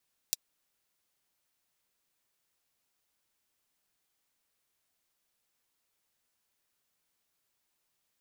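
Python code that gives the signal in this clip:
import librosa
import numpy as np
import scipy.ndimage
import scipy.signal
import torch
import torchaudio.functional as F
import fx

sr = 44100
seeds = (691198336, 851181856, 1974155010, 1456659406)

y = fx.drum_hat(sr, length_s=0.24, from_hz=4400.0, decay_s=0.03)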